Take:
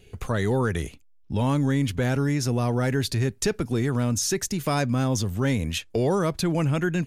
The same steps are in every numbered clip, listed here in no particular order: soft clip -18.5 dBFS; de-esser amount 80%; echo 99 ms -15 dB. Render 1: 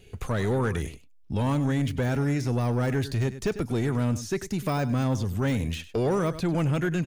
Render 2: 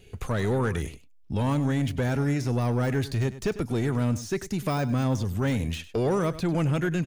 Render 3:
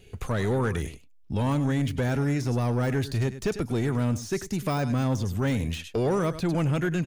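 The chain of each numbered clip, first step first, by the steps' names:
de-esser > echo > soft clip; soft clip > de-esser > echo; echo > soft clip > de-esser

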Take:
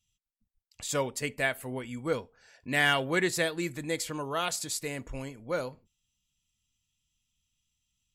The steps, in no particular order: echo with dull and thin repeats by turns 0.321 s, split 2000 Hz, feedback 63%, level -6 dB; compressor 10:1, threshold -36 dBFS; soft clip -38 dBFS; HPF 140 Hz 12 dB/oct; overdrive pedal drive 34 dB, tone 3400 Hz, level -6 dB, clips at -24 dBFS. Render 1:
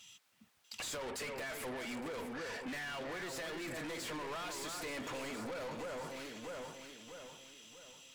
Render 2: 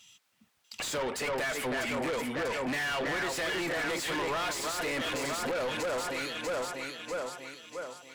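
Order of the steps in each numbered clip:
HPF > overdrive pedal > echo with dull and thin repeats by turns > compressor > soft clip; echo with dull and thin repeats by turns > compressor > soft clip > HPF > overdrive pedal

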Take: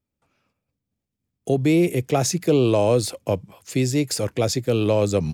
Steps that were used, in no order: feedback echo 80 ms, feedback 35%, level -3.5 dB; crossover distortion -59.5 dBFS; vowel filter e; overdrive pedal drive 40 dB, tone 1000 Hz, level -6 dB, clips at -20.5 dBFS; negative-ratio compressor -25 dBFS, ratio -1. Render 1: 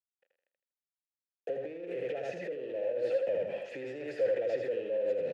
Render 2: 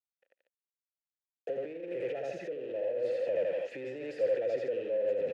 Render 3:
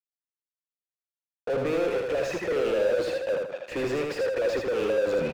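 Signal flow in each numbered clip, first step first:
crossover distortion > overdrive pedal > feedback echo > negative-ratio compressor > vowel filter; feedback echo > crossover distortion > overdrive pedal > negative-ratio compressor > vowel filter; vowel filter > crossover distortion > negative-ratio compressor > overdrive pedal > feedback echo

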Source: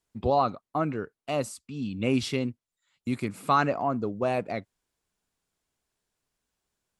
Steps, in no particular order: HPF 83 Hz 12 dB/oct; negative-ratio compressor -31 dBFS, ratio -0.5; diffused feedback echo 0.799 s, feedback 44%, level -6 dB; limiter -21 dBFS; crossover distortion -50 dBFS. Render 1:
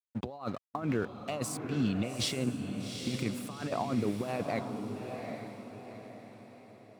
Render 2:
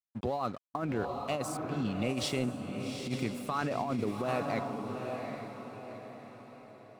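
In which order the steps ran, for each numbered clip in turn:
crossover distortion > negative-ratio compressor > HPF > limiter > diffused feedback echo; limiter > HPF > crossover distortion > diffused feedback echo > negative-ratio compressor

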